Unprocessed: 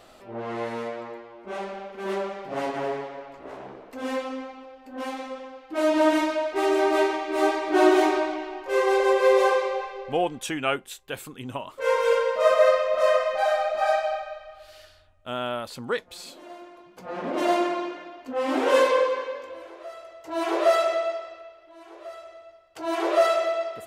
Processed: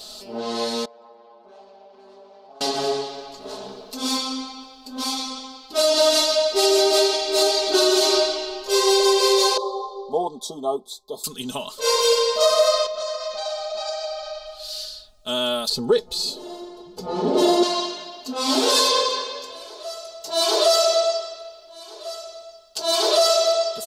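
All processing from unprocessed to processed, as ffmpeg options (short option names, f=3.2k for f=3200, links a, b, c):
-filter_complex "[0:a]asettb=1/sr,asplit=3[a][b][c];[a]atrim=end=0.854[d];[b]atrim=start=0.85:end=2.61,asetpts=PTS-STARTPTS,afade=t=in:d=0.004:c=qsin,afade=t=out:st=1.756:d=0.004:c=qsin,acompressor=threshold=-41dB:ratio=5:attack=3.2:release=140:knee=1:detection=peak,bandpass=f=830:t=q:w=1.6,tremolo=f=140:d=0.571[e];[c]atrim=start=2.606[f];[d][e]acrossfade=d=0.004:c1=hsin:c2=qsin[g];[g][f]acrossfade=d=0.004:c1=qsin:c2=hsin,asettb=1/sr,asplit=3[h][i][j];[h]atrim=end=9.574[k];[i]atrim=start=9.57:end=11.24,asetpts=PTS-STARTPTS,afade=t=in:d=0.004:c=qsin,afade=t=out:st=1.666:d=0.004:c=qsin,asuperstop=centerf=2000:order=20:qfactor=0.92,acrossover=split=250 2100:gain=0.2 1 0.112[l][m][n];[l][m][n]amix=inputs=3:normalize=0[o];[j]atrim=start=11.236[p];[k][o]acrossfade=d=0.004:c1=hsin:c2=qsin[q];[q][p]acrossfade=d=0.004:c1=qsin:c2=hsin,asettb=1/sr,asplit=3[r][s][t];[r]atrim=end=12.864[u];[s]atrim=start=12.86:end=14.46,asetpts=PTS-STARTPTS,afade=t=in:d=0.004:c=qsin,afade=t=out:st=1.596:d=0.004:c=qsin,lowpass=f=7.4k:w=0.5412,lowpass=f=7.4k:w=1.3066,acompressor=threshold=-33dB:ratio=4:attack=3.2:release=140:knee=1:detection=peak[v];[t]atrim=start=14.456[w];[u][v]acrossfade=d=0.004:c1=hsin:c2=qsin[x];[x][w]acrossfade=d=0.004:c1=qsin:c2=hsin,asettb=1/sr,asplit=3[y][z][aa];[y]atrim=end=15.694[ab];[z]atrim=start=15.69:end=17.63,asetpts=PTS-STARTPTS,afade=t=in:d=0.004:c=qsin,afade=t=out:st=1.936:d=0.004:c=qsin,tiltshelf=f=1.1k:g=9,aecho=1:1:2.3:0.49,atrim=end_sample=85554[ac];[aa]atrim=start=17.626[ad];[ab][ac]acrossfade=d=0.004:c1=hsin:c2=qsin[ae];[ae][ad]acrossfade=d=0.004:c1=qsin:c2=hsin,highshelf=f=3k:t=q:w=3:g=13,aecho=1:1:4.7:0.9,alimiter=limit=-10dB:level=0:latency=1:release=139,volume=2dB"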